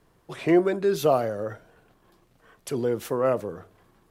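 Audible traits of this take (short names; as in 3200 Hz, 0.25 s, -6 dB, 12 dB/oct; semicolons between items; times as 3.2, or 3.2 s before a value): noise floor -64 dBFS; spectral tilt -4.5 dB/oct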